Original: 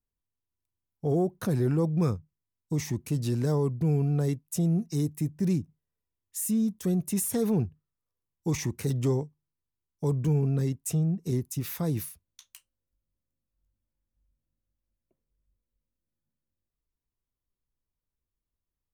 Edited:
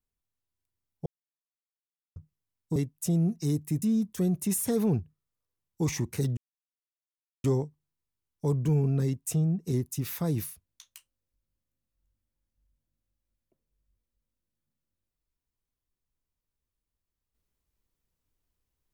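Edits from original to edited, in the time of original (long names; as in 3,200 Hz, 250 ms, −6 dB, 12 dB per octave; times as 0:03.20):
0:01.06–0:02.16: silence
0:02.76–0:04.26: remove
0:05.32–0:06.48: remove
0:09.03: splice in silence 1.07 s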